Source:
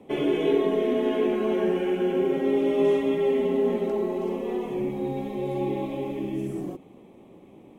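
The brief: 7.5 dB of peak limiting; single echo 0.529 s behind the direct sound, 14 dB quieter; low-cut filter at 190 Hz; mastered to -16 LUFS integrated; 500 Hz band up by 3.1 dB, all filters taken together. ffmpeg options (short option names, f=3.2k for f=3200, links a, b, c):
-af "highpass=190,equalizer=f=500:t=o:g=4.5,alimiter=limit=-16dB:level=0:latency=1,aecho=1:1:529:0.2,volume=9dB"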